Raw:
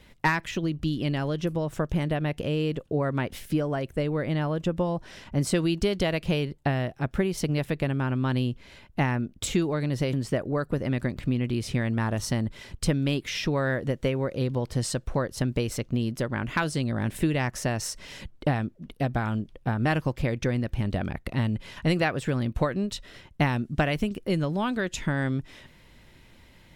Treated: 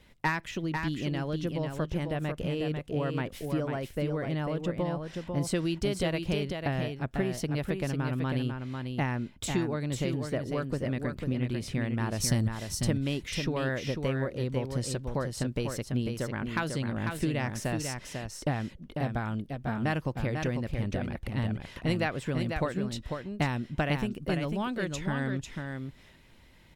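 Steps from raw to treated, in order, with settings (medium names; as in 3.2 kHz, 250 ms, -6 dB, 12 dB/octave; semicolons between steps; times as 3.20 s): 12.20–12.74 s: tone controls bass +7 dB, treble +11 dB; on a send: delay 496 ms -5.5 dB; on the sum: trim -5 dB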